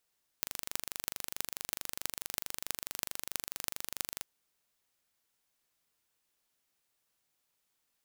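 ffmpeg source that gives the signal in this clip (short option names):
-f lavfi -i "aevalsrc='0.631*eq(mod(n,1793),0)*(0.5+0.5*eq(mod(n,14344),0))':d=3.81:s=44100"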